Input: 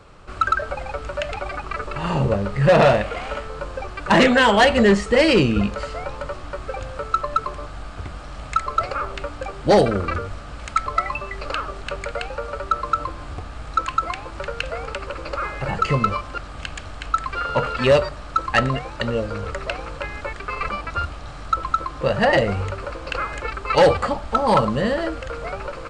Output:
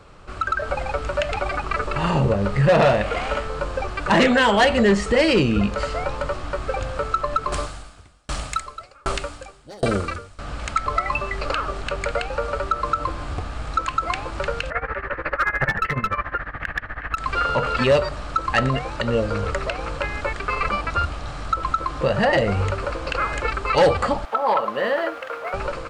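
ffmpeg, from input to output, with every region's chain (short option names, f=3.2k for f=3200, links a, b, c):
-filter_complex "[0:a]asettb=1/sr,asplit=3[a][b][c];[a]atrim=end=7.524[d];[b]atrim=start=7.52:end=10.39,asetpts=PTS-STARTPTS,afade=t=in:d=0.004:c=qsin,afade=t=out:st=2.866:d=0.004:c=qsin,acontrast=79,aemphasis=mode=production:type=75fm,aeval=exprs='val(0)*pow(10,-40*if(lt(mod(1.3*n/s,1),2*abs(1.3)/1000),1-mod(1.3*n/s,1)/(2*abs(1.3)/1000),(mod(1.3*n/s,1)-2*abs(1.3)/1000)/(1-2*abs(1.3)/1000))/20)':c=same[e];[c]atrim=start=10.386[f];[d][e]acrossfade=d=0.004:c1=hsin:c2=qsin[g];[g][f]acrossfade=d=0.004:c1=qsin:c2=hsin,asettb=1/sr,asplit=3[h][i][j];[h]atrim=end=14.704[k];[i]atrim=start=14.7:end=17.17,asetpts=PTS-STARTPTS,afade=t=in:d=0.004:c=qsin,afade=t=out:st=2.466:d=0.004:c=qsin,tremolo=f=14:d=0.88,lowpass=f=1.8k:t=q:w=7.8,aeval=exprs='clip(val(0),-1,0.15)':c=same[l];[j]atrim=start=17.166[m];[k][l]acrossfade=d=0.004:c1=hsin:c2=qsin[n];[n][m]acrossfade=d=0.004:c1=qsin:c2=hsin,asettb=1/sr,asplit=3[o][p][q];[o]atrim=end=24.254[r];[p]atrim=start=24.25:end=25.54,asetpts=PTS-STARTPTS,afade=t=in:d=0.004:c=qsin,afade=t=out:st=1.286:d=0.004:c=qsin,highpass=540,lowpass=2.7k,aeval=exprs='sgn(val(0))*max(abs(val(0))-0.00237,0)':c=same[s];[q]atrim=start=25.536[t];[r][s]acrossfade=d=0.004:c1=hsin:c2=qsin[u];[u][t]acrossfade=d=0.004:c1=qsin:c2=hsin,alimiter=limit=-14.5dB:level=0:latency=1:release=154,dynaudnorm=f=390:g=3:m=4dB"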